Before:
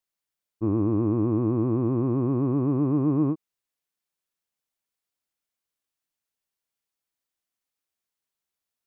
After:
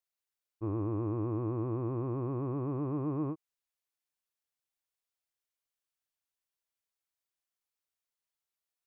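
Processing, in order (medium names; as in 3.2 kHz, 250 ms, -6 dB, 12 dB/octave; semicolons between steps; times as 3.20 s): peaking EQ 220 Hz -12 dB 0.98 oct; trim -5 dB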